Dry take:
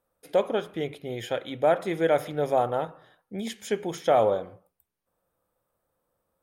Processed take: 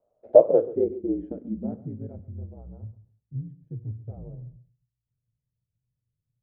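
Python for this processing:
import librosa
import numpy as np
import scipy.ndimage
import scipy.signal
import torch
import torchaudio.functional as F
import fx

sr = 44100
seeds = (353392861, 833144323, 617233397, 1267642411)

y = x * np.sin(2.0 * np.pi * 58.0 * np.arange(len(x)) / sr)
y = fx.echo_feedback(y, sr, ms=134, feedback_pct=18, wet_db=-17.0)
y = fx.filter_sweep_lowpass(y, sr, from_hz=640.0, to_hz=120.0, start_s=0.31, end_s=2.34, q=6.3)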